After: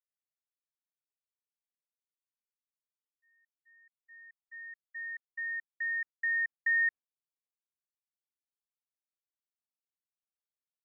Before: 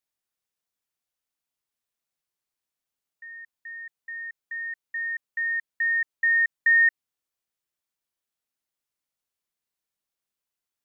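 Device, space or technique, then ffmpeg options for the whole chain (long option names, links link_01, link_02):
hearing-loss simulation: -af "lowpass=1700,agate=range=-33dB:threshold=-33dB:ratio=3:detection=peak,volume=-5.5dB"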